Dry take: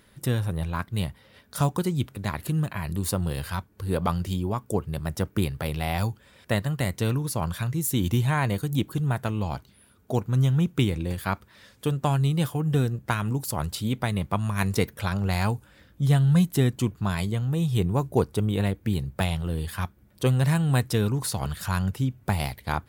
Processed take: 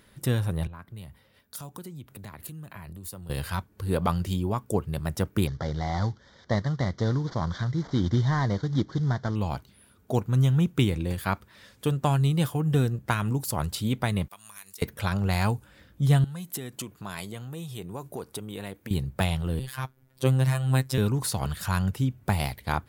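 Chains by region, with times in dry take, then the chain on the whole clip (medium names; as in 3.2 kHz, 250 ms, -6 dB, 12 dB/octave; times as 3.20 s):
0.67–3.30 s: treble shelf 12 kHz +11 dB + compression 12:1, threshold -37 dBFS + three bands expanded up and down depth 70%
5.47–9.36 s: CVSD coder 32 kbps + Butterworth band-stop 2.6 kHz, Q 2.2
14.28–14.82 s: differentiator + compression 5:1, threshold -40 dBFS
16.24–18.91 s: peaking EQ 12 kHz +4.5 dB 1.1 oct + compression 10:1, threshold -27 dBFS + high-pass 340 Hz 6 dB/octave
19.59–20.98 s: peaking EQ 200 Hz -6.5 dB 0.24 oct + robot voice 131 Hz
whole clip: none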